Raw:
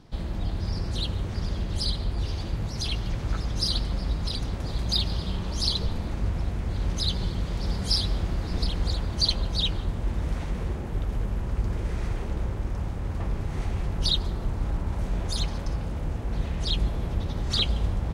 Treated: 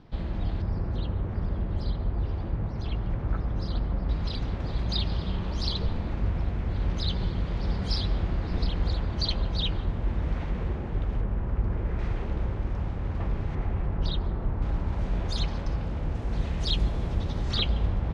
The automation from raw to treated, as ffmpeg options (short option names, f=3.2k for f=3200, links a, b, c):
-af "asetnsamples=n=441:p=0,asendcmd='0.62 lowpass f 1500;4.09 lowpass f 3200;11.21 lowpass f 2000;11.99 lowpass f 3500;13.55 lowpass f 1900;14.62 lowpass f 4300;16.15 lowpass f 7000;17.51 lowpass f 3500',lowpass=3.2k"